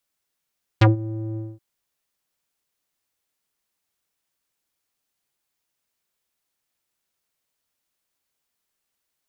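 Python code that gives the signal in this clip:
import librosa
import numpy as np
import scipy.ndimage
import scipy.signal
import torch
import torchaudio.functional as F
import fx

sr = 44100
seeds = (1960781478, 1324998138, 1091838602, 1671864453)

y = fx.sub_voice(sr, note=45, wave='square', cutoff_hz=370.0, q=2.0, env_oct=4.0, env_s=0.07, attack_ms=9.5, decay_s=0.14, sustain_db=-19, release_s=0.22, note_s=0.56, slope=12)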